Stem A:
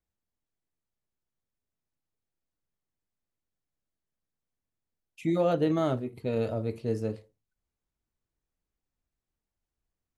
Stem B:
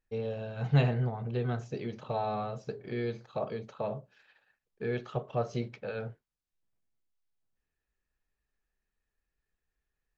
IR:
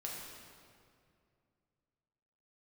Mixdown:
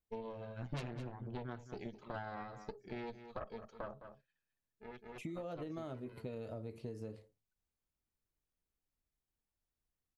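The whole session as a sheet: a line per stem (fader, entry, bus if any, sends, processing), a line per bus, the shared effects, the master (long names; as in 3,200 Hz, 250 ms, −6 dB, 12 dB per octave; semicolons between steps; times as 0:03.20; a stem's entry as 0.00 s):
−5.0 dB, 0.00 s, no send, no echo send, downward compressor, threshold −30 dBFS, peak gain reduction 9 dB
−2.5 dB, 0.00 s, no send, echo send −16.5 dB, spectral dynamics exaggerated over time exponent 1.5; harmonic generator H 6 −10 dB, 8 −7 dB, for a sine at −13 dBFS; automatic ducking −19 dB, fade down 1.45 s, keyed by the first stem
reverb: not used
echo: single-tap delay 210 ms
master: downward compressor 4 to 1, threshold −41 dBFS, peak gain reduction 16 dB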